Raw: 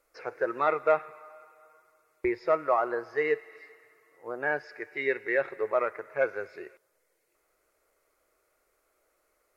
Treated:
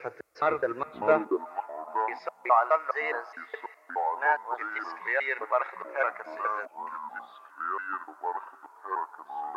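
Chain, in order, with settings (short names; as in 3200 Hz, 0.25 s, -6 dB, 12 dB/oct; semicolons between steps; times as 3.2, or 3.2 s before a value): slices in reverse order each 0.208 s, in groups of 2; echoes that change speed 0.426 s, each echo -6 st, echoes 2, each echo -6 dB; high-pass sweep 75 Hz -> 880 Hz, 0.94–1.54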